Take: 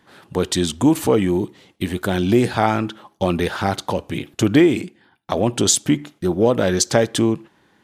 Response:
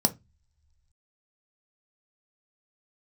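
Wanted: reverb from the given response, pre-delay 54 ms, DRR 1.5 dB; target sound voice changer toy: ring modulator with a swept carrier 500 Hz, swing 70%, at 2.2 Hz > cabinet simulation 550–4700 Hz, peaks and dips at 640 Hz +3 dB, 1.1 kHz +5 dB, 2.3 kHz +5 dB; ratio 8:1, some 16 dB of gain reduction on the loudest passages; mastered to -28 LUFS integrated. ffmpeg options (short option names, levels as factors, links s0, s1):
-filter_complex "[0:a]acompressor=threshold=0.0447:ratio=8,asplit=2[s0][s1];[1:a]atrim=start_sample=2205,adelay=54[s2];[s1][s2]afir=irnorm=-1:irlink=0,volume=0.282[s3];[s0][s3]amix=inputs=2:normalize=0,aeval=exprs='val(0)*sin(2*PI*500*n/s+500*0.7/2.2*sin(2*PI*2.2*n/s))':c=same,highpass=550,equalizer=f=640:t=q:w=4:g=3,equalizer=f=1100:t=q:w=4:g=5,equalizer=f=2300:t=q:w=4:g=5,lowpass=f=4700:w=0.5412,lowpass=f=4700:w=1.3066,volume=1.12"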